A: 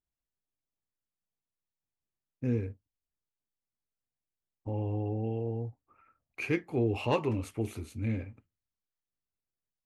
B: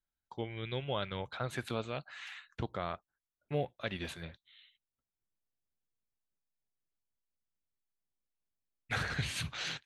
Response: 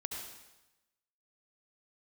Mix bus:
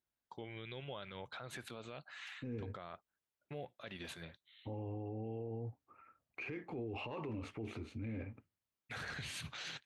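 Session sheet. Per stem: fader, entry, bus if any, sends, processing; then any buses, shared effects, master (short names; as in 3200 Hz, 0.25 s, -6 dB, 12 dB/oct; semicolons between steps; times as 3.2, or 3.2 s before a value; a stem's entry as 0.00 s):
+1.5 dB, 0.00 s, no send, LPF 3200 Hz 12 dB/oct
-3.0 dB, 0.00 s, no send, dry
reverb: off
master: HPF 130 Hz 6 dB/oct; limiter -35.5 dBFS, peak gain reduction 20.5 dB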